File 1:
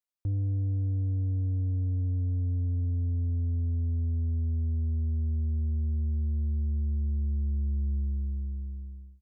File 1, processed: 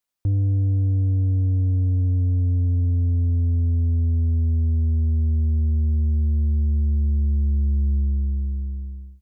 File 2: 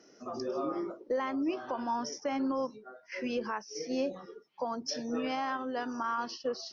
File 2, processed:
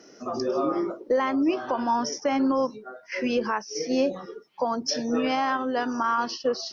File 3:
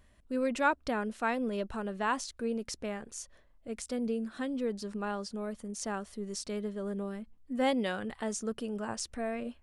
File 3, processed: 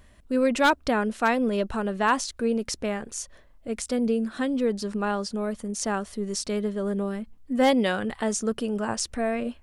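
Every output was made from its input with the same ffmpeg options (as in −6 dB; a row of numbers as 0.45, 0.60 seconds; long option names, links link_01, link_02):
-af "aeval=exprs='0.1*(abs(mod(val(0)/0.1+3,4)-2)-1)':channel_layout=same,volume=8.5dB"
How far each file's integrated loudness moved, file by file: +8.5, +8.5, +8.5 LU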